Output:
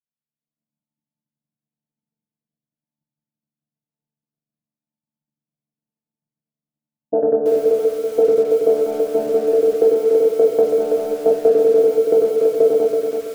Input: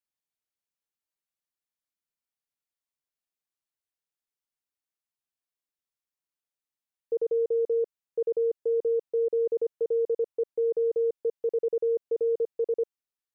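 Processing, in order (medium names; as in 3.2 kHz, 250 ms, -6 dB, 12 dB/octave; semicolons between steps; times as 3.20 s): vocoder on a held chord bare fifth, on D3; band-stop 420 Hz, Q 12; level-controlled noise filter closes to 430 Hz, open at -32 dBFS; level rider gain up to 16.5 dB; peak limiter -11.5 dBFS, peak gain reduction 5.5 dB; transient shaper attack +7 dB, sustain -10 dB; simulated room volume 110 m³, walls mixed, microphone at 0.67 m; bit-crushed delay 329 ms, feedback 35%, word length 6-bit, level -5.5 dB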